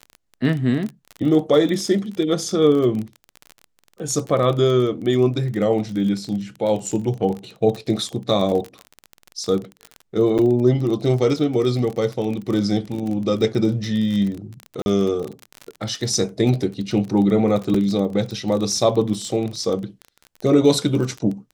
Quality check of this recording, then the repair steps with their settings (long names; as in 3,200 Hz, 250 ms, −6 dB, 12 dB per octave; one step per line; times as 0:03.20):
surface crackle 29 per second −25 dBFS
0:10.38–0:10.39: drop-out 7.6 ms
0:14.82–0:14.86: drop-out 41 ms
0:17.74: drop-out 4.5 ms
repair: click removal
repair the gap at 0:10.38, 7.6 ms
repair the gap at 0:14.82, 41 ms
repair the gap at 0:17.74, 4.5 ms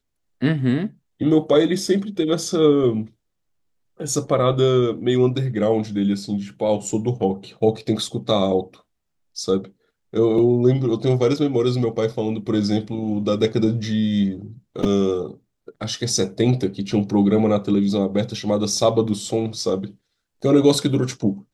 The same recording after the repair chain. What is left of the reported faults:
none of them is left